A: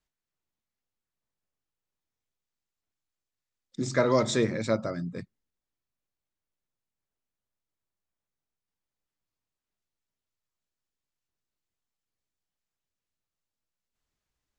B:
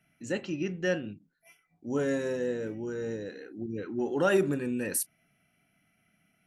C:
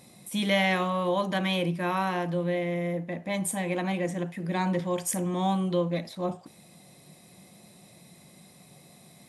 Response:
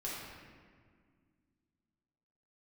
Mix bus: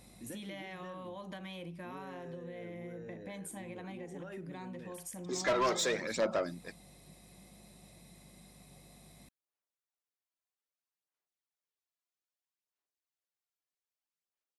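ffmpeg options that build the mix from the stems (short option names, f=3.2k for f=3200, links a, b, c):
-filter_complex "[0:a]agate=range=-7dB:threshold=-36dB:ratio=16:detection=peak,highpass=450,aphaser=in_gain=1:out_gain=1:delay=3:decay=0.55:speed=0.62:type=sinusoidal,adelay=1500,volume=-0.5dB[a];[1:a]highshelf=f=3.6k:g=-9,acompressor=threshold=-35dB:ratio=3,volume=-4dB[b];[2:a]acompressor=threshold=-30dB:ratio=2,volume=-5dB[c];[b][c]amix=inputs=2:normalize=0,aeval=exprs='val(0)+0.000708*(sin(2*PI*50*n/s)+sin(2*PI*2*50*n/s)/2+sin(2*PI*3*50*n/s)/3+sin(2*PI*4*50*n/s)/4+sin(2*PI*5*50*n/s)/5)':c=same,acompressor=threshold=-42dB:ratio=6,volume=0dB[d];[a][d]amix=inputs=2:normalize=0,asoftclip=type=tanh:threshold=-25dB"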